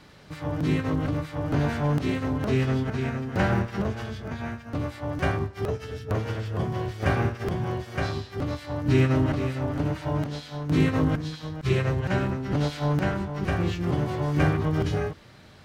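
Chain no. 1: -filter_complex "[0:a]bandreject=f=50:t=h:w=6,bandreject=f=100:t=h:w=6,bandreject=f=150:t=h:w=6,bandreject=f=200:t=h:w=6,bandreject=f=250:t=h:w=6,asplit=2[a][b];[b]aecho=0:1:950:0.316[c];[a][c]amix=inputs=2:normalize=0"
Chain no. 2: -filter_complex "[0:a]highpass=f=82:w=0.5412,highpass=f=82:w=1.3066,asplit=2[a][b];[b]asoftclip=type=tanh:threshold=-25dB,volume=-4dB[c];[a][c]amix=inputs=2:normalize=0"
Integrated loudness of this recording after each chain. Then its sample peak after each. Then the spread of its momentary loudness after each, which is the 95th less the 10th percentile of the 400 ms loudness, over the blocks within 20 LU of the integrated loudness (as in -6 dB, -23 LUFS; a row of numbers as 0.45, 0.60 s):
-27.5, -24.5 LUFS; -8.5, -9.0 dBFS; 8, 8 LU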